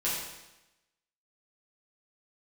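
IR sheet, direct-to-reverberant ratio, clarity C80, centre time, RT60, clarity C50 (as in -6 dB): -9.0 dB, 3.5 dB, 67 ms, 0.95 s, 1.0 dB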